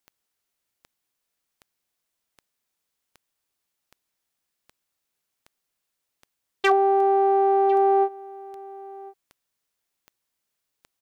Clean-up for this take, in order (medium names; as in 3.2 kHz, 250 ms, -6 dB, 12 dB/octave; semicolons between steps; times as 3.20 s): clip repair -10 dBFS; de-click; inverse comb 1051 ms -20.5 dB